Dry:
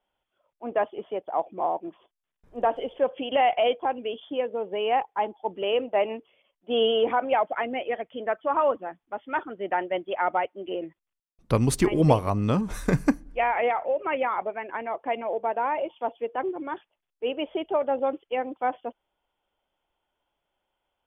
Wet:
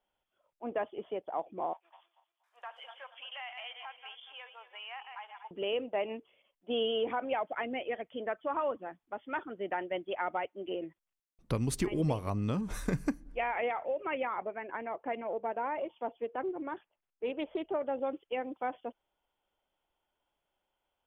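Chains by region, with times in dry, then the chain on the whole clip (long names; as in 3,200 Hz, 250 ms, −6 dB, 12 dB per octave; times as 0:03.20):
0:01.73–0:05.51: feedback delay that plays each chunk backwards 118 ms, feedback 53%, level −11.5 dB + high-pass filter 1,100 Hz 24 dB per octave + downward compressor 2.5 to 1, threshold −39 dBFS
0:14.27–0:17.86: low-pass filter 2,600 Hz + highs frequency-modulated by the lows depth 0.11 ms
whole clip: dynamic equaliser 820 Hz, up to −4 dB, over −34 dBFS, Q 0.78; downward compressor 2.5 to 1, threshold −25 dBFS; level −4 dB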